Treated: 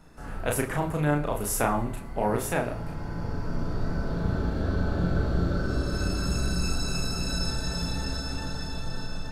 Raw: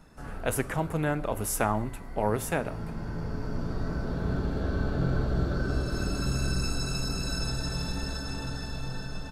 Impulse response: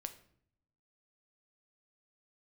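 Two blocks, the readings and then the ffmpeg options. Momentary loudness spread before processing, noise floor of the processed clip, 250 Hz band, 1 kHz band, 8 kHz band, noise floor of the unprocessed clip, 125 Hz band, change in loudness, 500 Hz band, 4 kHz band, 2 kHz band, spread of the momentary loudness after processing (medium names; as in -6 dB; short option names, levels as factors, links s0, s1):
8 LU, -36 dBFS, +2.0 dB, +2.0 dB, +2.0 dB, -39 dBFS, +1.5 dB, +2.0 dB, +1.5 dB, +2.5 dB, +1.5 dB, 8 LU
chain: -filter_complex "[0:a]asplit=2[s0][s1];[1:a]atrim=start_sample=2205,adelay=34[s2];[s1][s2]afir=irnorm=-1:irlink=0,volume=1.06[s3];[s0][s3]amix=inputs=2:normalize=0"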